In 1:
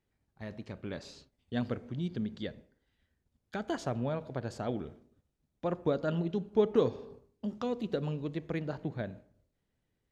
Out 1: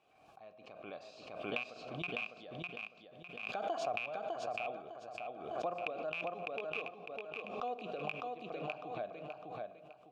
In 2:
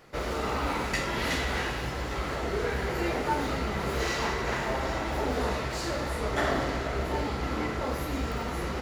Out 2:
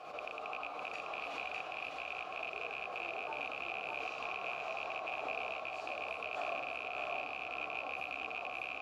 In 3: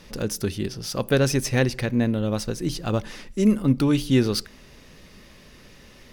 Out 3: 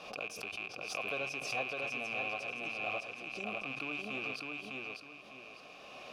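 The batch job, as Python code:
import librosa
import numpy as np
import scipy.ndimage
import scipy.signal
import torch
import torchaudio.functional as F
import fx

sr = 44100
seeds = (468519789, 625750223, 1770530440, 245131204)

y = fx.rattle_buzz(x, sr, strikes_db=-31.0, level_db=-13.0)
y = fx.recorder_agc(y, sr, target_db=-12.5, rise_db_per_s=12.0, max_gain_db=30)
y = fx.vowel_filter(y, sr, vowel='a')
y = fx.high_shelf(y, sr, hz=3100.0, db=8.0)
y = fx.echo_feedback(y, sr, ms=604, feedback_pct=32, wet_db=-3.0)
y = fx.room_shoebox(y, sr, seeds[0], volume_m3=2900.0, walls='furnished', distance_m=0.51)
y = fx.pre_swell(y, sr, db_per_s=51.0)
y = y * 10.0 ** (-6.0 / 20.0)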